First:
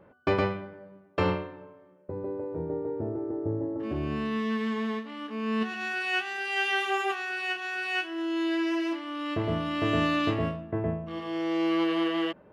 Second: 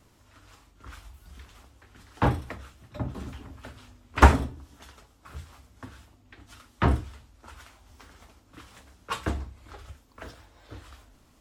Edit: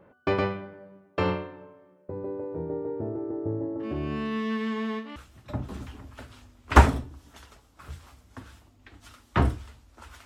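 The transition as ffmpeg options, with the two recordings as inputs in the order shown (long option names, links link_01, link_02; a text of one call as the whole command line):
ffmpeg -i cue0.wav -i cue1.wav -filter_complex "[0:a]apad=whole_dur=10.25,atrim=end=10.25,atrim=end=5.162[link_01];[1:a]atrim=start=2.618:end=7.71[link_02];[link_01][link_02]acrossfade=duration=0.004:curve1=hsin:curve2=hsin" out.wav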